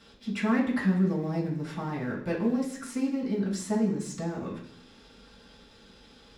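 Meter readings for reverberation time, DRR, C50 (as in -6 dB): 0.65 s, -6.5 dB, 6.5 dB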